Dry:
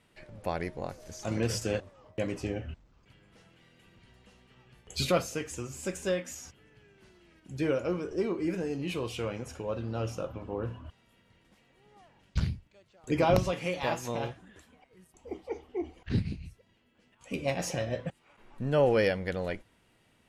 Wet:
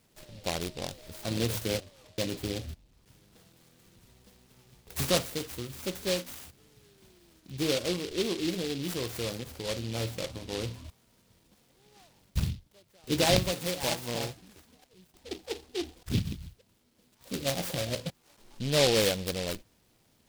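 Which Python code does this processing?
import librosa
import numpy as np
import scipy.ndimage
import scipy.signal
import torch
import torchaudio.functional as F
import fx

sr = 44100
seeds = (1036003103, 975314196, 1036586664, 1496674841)

y = fx.noise_mod_delay(x, sr, seeds[0], noise_hz=3400.0, depth_ms=0.17)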